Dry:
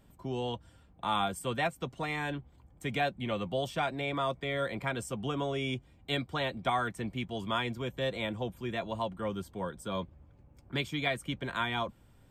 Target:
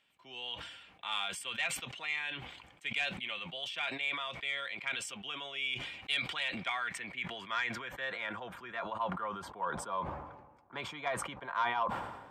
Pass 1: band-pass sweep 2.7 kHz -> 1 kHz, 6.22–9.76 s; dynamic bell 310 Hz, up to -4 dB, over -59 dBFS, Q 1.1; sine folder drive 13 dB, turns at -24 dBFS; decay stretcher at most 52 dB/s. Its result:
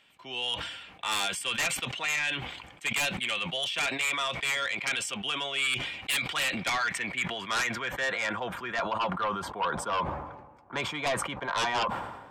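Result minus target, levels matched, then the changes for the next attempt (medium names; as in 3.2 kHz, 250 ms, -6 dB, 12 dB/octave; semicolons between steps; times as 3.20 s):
sine folder: distortion +19 dB
change: sine folder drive 2 dB, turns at -24 dBFS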